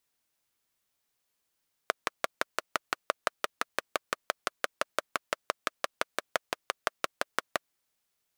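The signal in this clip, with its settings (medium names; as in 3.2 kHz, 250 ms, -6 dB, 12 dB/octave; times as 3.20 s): single-cylinder engine model, steady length 5.81 s, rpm 700, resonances 620/1200 Hz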